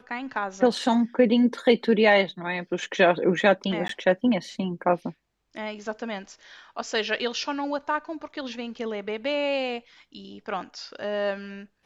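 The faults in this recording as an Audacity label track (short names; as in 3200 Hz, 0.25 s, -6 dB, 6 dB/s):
3.880000	3.890000	gap 13 ms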